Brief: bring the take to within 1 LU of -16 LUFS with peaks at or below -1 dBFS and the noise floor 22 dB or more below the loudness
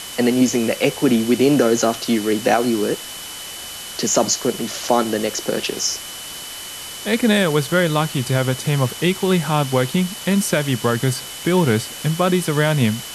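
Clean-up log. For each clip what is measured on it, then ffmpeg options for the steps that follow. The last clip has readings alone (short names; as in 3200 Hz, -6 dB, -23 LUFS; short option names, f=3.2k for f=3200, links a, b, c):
steady tone 3000 Hz; tone level -36 dBFS; noise floor -33 dBFS; noise floor target -41 dBFS; loudness -19.0 LUFS; peak -2.0 dBFS; loudness target -16.0 LUFS
-> -af "bandreject=f=3k:w=30"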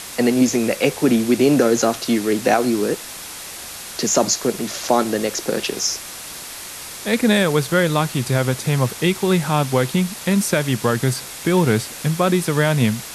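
steady tone none; noise floor -34 dBFS; noise floor target -41 dBFS
-> -af "afftdn=nr=7:nf=-34"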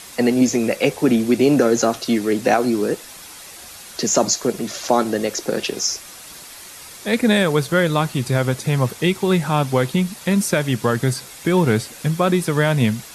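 noise floor -39 dBFS; noise floor target -41 dBFS
-> -af "afftdn=nr=6:nf=-39"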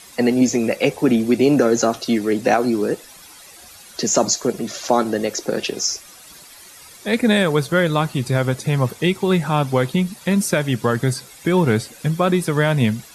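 noise floor -43 dBFS; loudness -19.0 LUFS; peak -2.5 dBFS; loudness target -16.0 LUFS
-> -af "volume=3dB,alimiter=limit=-1dB:level=0:latency=1"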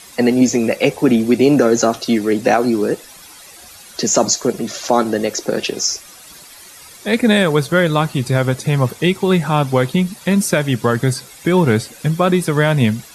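loudness -16.0 LUFS; peak -1.0 dBFS; noise floor -40 dBFS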